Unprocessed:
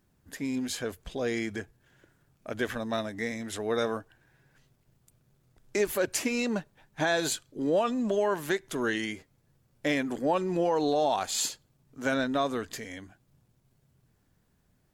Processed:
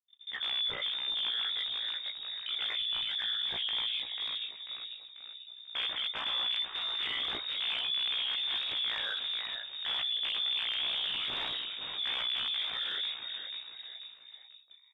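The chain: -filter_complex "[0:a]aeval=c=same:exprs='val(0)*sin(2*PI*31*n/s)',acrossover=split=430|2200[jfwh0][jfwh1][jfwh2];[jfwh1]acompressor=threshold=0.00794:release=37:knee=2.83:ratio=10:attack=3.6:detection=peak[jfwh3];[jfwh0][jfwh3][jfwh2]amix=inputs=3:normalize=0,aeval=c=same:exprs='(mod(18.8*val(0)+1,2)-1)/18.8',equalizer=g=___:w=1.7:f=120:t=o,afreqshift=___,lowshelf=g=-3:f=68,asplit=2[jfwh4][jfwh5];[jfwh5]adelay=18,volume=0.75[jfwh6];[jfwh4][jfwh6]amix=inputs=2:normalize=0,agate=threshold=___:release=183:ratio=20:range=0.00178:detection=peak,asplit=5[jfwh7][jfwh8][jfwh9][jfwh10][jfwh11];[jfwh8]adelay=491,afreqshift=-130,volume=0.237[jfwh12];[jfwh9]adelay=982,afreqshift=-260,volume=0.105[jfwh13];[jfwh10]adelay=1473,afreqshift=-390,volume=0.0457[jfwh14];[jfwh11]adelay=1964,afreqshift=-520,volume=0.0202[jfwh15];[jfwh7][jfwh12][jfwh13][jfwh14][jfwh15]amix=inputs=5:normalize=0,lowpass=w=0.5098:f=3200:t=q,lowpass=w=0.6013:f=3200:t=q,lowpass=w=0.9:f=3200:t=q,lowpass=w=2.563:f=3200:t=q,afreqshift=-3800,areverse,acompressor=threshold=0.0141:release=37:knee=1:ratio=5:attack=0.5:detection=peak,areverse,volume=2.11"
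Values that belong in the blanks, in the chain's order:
13, 120, 0.00112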